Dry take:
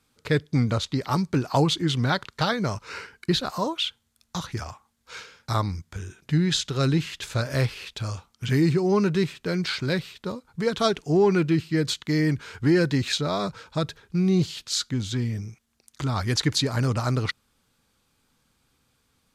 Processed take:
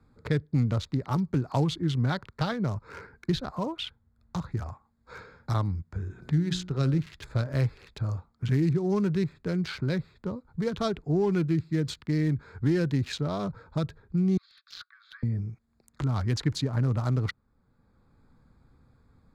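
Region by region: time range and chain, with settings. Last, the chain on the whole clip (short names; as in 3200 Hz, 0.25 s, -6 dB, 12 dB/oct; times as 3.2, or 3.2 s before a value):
6.04–7 de-hum 60.32 Hz, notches 25 + upward compressor, threshold -37 dBFS
14.37–15.23 sample leveller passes 1 + rippled Chebyshev high-pass 1100 Hz, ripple 6 dB + air absorption 250 m
whole clip: Wiener smoothing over 15 samples; low shelf 190 Hz +10 dB; three-band squash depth 40%; gain -7.5 dB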